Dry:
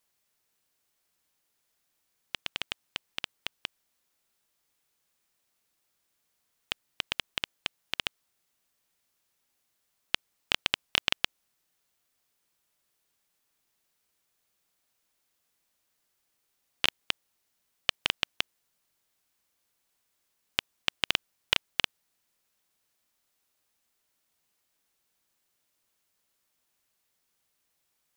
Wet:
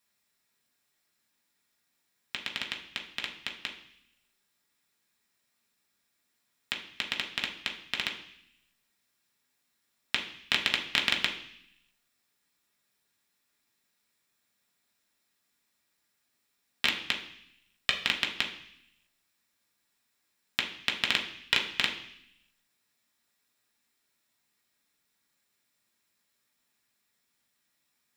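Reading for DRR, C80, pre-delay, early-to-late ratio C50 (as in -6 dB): -1.0 dB, 12.0 dB, 3 ms, 9.0 dB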